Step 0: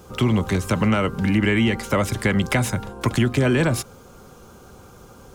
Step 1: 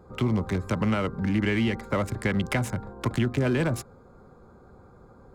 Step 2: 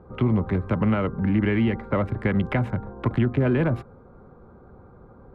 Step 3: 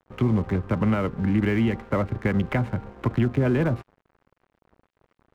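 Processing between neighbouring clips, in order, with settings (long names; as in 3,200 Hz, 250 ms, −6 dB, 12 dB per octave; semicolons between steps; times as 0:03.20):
adaptive Wiener filter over 15 samples; level −5.5 dB
high-frequency loss of the air 490 metres; level +4 dB
dead-zone distortion −43 dBFS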